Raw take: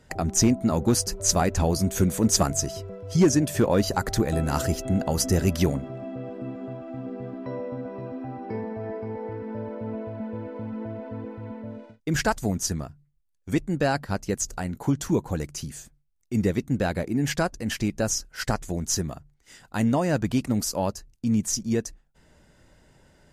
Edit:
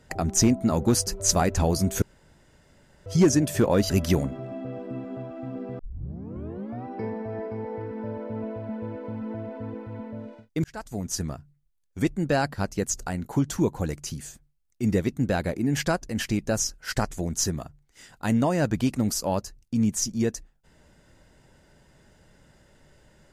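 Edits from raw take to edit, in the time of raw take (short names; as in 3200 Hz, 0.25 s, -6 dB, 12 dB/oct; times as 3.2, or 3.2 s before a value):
2.02–3.06 room tone
3.9–5.41 cut
7.3 tape start 1.06 s
12.15–12.83 fade in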